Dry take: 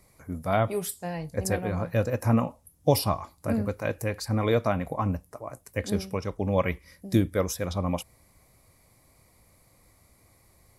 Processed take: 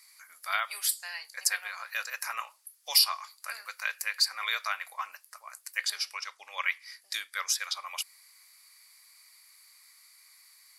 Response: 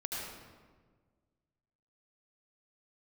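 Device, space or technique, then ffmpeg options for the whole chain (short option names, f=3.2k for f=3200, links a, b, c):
headphones lying on a table: -filter_complex "[0:a]asettb=1/sr,asplit=3[a][b][c];[a]atrim=end=5.964[d];[b]atrim=start=5.96:end=7.64,asetpts=PTS-STARTPTS,afade=t=in:d=0.004:c=qsin,afade=t=out:st=1.676:d=0.004:c=qsin,lowpass=10k[e];[c]atrim=start=7.636[f];[d][e]acrossfade=d=0.004:c1=hsin:c2=qsin[g];[g][f]acrossfade=d=0.004:c1=qsin:c2=hsin,highpass=f=1.4k:w=0.5412,highpass=f=1.4k:w=1.3066,equalizer=f=4.6k:t=o:w=0.23:g=10,volume=6dB"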